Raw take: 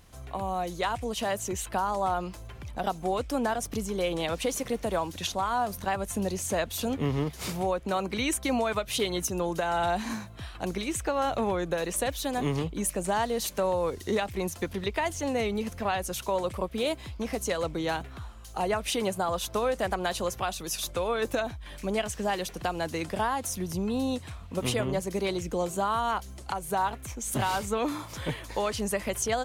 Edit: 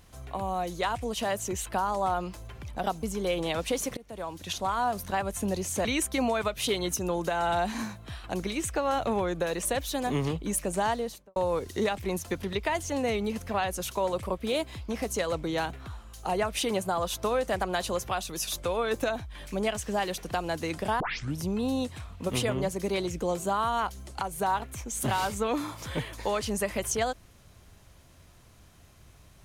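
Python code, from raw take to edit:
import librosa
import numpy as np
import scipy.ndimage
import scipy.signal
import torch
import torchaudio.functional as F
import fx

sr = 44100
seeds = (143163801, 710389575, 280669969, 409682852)

y = fx.studio_fade_out(x, sr, start_s=13.18, length_s=0.49)
y = fx.edit(y, sr, fx.cut(start_s=3.03, length_s=0.74),
    fx.fade_in_from(start_s=4.71, length_s=0.72, floor_db=-23.5),
    fx.cut(start_s=6.59, length_s=1.57),
    fx.tape_start(start_s=23.31, length_s=0.39), tone=tone)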